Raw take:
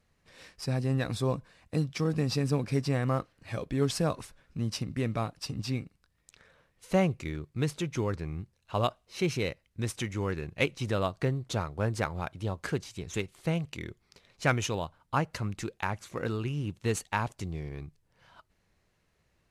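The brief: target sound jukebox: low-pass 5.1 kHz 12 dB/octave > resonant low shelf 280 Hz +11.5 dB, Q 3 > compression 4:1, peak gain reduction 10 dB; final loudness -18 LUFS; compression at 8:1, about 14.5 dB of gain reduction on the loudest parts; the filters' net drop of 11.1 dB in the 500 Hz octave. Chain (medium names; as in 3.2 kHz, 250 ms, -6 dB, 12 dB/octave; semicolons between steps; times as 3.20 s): peaking EQ 500 Hz -8 dB; compression 8:1, threshold -38 dBFS; low-pass 5.1 kHz 12 dB/octave; resonant low shelf 280 Hz +11.5 dB, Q 3; compression 4:1, threshold -30 dBFS; trim +17.5 dB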